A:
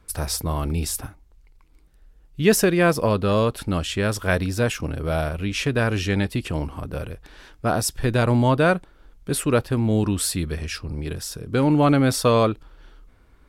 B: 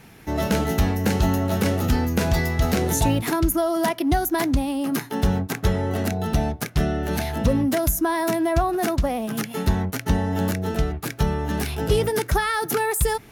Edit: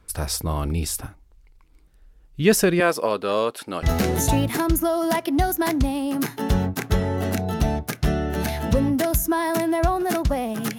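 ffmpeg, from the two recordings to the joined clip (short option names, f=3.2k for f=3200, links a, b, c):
-filter_complex "[0:a]asettb=1/sr,asplit=3[a][b][c];[a]atrim=end=2.804[d];[b]atrim=start=2.8:end=3.83,asetpts=PTS-STARTPTS,afade=t=in:d=0.004:c=qsin,afade=t=out:st=1.026:d=0.004:c=qsin,highpass=360[e];[c]atrim=start=3.826[f];[d][e]acrossfade=d=0.004:c1=hsin:c2=qsin[g];[g][f]acrossfade=d=0.004:c1=qsin:c2=hsin,apad=whole_dur=10.78,atrim=end=10.78,atrim=end=3.832[h];[1:a]atrim=start=2.558:end=9.51[i];[h][i]acrossfade=d=0.004:c1=hsin:c2=hsin"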